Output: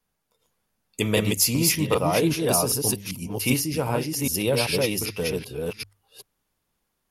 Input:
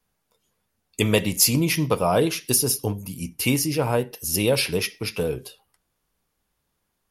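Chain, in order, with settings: chunks repeated in reverse 389 ms, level -1.5 dB; hum notches 50/100 Hz; trim -3 dB

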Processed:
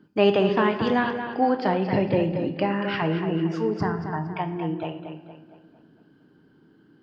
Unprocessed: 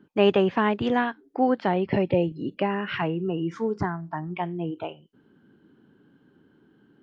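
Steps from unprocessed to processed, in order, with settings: peaking EQ 4.8 kHz +14 dB 0.21 oct; tape echo 229 ms, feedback 47%, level -7.5 dB, low-pass 4.2 kHz; simulated room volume 500 m³, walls mixed, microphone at 0.5 m

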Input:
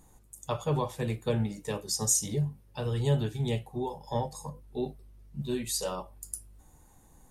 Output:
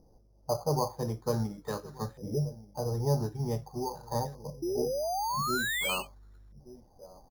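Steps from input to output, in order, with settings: on a send: delay 1179 ms -19 dB; on the sum: LFO low-pass saw up 0.46 Hz 530–1800 Hz; 4.82–5.89 s: touch-sensitive phaser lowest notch 280 Hz, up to 1.7 kHz, full sweep at -25 dBFS; 4.62–6.55 s: painted sound rise 330–6600 Hz -29 dBFS; careless resampling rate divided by 8×, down filtered, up hold; trim -2.5 dB

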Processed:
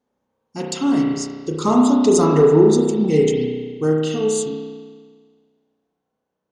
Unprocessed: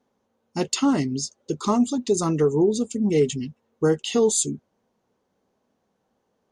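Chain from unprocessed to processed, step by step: Doppler pass-by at 2.33 s, 5 m/s, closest 3.4 m; spring tank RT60 1.6 s, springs 32 ms, chirp 65 ms, DRR -1 dB; trim +5 dB

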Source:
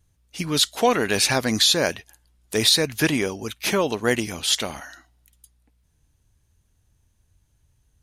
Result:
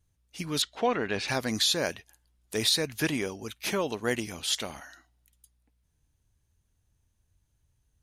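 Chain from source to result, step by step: 0.62–1.28 s: low-pass 3.2 kHz 12 dB/octave; trim -7.5 dB

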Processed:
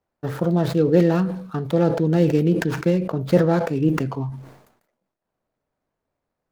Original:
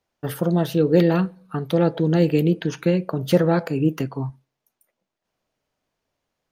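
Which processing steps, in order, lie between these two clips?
median filter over 15 samples; decay stretcher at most 78 dB/s

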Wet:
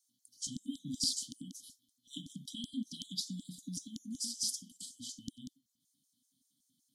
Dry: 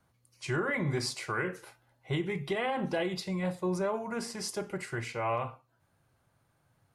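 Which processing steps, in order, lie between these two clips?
LFO high-pass square 5.3 Hz 560–6300 Hz; brick-wall FIR band-stop 280–3000 Hz; small resonant body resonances 310/620/1900 Hz, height 17 dB, ringing for 20 ms; trim +2 dB

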